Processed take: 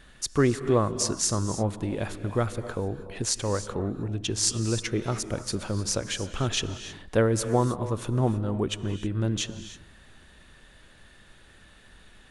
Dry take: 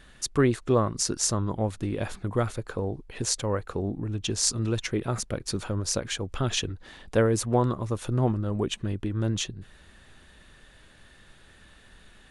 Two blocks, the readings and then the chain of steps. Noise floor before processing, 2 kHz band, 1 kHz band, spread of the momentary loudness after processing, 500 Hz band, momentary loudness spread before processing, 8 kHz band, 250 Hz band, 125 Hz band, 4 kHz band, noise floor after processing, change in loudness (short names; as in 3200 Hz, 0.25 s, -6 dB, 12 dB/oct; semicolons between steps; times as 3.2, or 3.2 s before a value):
-54 dBFS, +0.5 dB, +0.5 dB, 8 LU, +0.5 dB, 8 LU, +0.5 dB, +0.5 dB, 0.0 dB, +0.5 dB, -54 dBFS, 0.0 dB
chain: non-linear reverb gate 0.34 s rising, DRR 11 dB